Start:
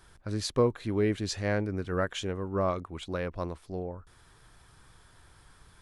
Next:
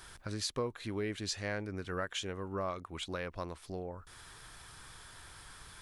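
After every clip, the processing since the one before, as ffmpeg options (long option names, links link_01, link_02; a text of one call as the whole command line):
ffmpeg -i in.wav -af "tiltshelf=frequency=910:gain=-4.5,acompressor=threshold=-48dB:ratio=2,volume=5dB" out.wav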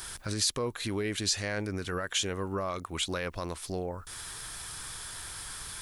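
ffmpeg -i in.wav -af "alimiter=level_in=6.5dB:limit=-24dB:level=0:latency=1:release=20,volume=-6.5dB,highshelf=frequency=4300:gain=11,volume=6.5dB" out.wav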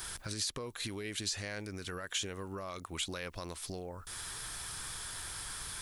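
ffmpeg -i in.wav -filter_complex "[0:a]acrossover=split=2500|6500[link_01][link_02][link_03];[link_01]acompressor=threshold=-39dB:ratio=4[link_04];[link_02]acompressor=threshold=-37dB:ratio=4[link_05];[link_03]acompressor=threshold=-40dB:ratio=4[link_06];[link_04][link_05][link_06]amix=inputs=3:normalize=0,volume=-1dB" out.wav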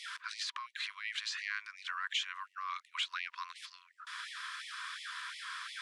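ffmpeg -i in.wav -af "afftfilt=real='re*(1-between(b*sr/4096,260,960))':imag='im*(1-between(b*sr/4096,260,960))':win_size=4096:overlap=0.75,highpass=200,lowpass=2800,afftfilt=real='re*gte(b*sr/1024,310*pow(1900/310,0.5+0.5*sin(2*PI*2.8*pts/sr)))':imag='im*gte(b*sr/1024,310*pow(1900/310,0.5+0.5*sin(2*PI*2.8*pts/sr)))':win_size=1024:overlap=0.75,volume=7dB" out.wav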